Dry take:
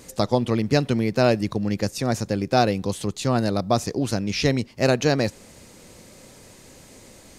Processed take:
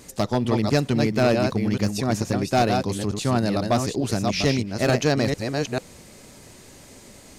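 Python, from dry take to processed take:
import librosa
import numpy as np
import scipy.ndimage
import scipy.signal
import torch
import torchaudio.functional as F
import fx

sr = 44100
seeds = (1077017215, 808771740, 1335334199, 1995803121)

y = fx.reverse_delay(x, sr, ms=445, wet_db=-5.0)
y = np.clip(10.0 ** (12.0 / 20.0) * y, -1.0, 1.0) / 10.0 ** (12.0 / 20.0)
y = fx.notch(y, sr, hz=510.0, q=12.0)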